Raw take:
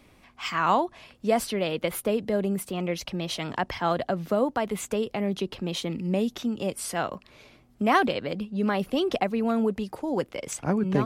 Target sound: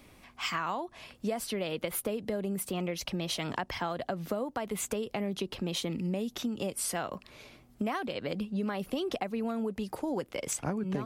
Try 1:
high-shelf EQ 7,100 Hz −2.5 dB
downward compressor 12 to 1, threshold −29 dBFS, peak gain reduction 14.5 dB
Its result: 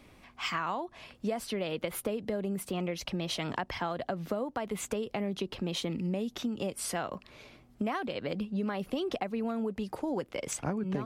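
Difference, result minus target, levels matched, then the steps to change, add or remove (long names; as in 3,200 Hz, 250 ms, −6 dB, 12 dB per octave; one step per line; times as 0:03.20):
8,000 Hz band −3.0 dB
change: high-shelf EQ 7,100 Hz +6 dB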